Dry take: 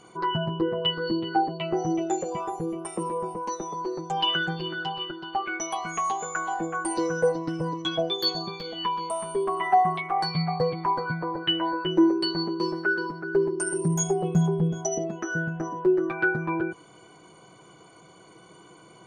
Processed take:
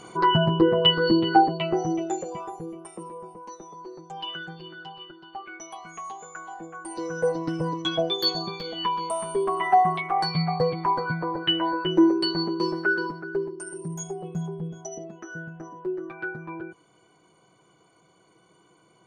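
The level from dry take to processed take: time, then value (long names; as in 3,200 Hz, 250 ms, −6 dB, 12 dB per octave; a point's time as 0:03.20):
0:01.34 +7 dB
0:01.89 0 dB
0:03.18 −10 dB
0:06.80 −10 dB
0:07.42 +1.5 dB
0:13.06 +1.5 dB
0:13.58 −9 dB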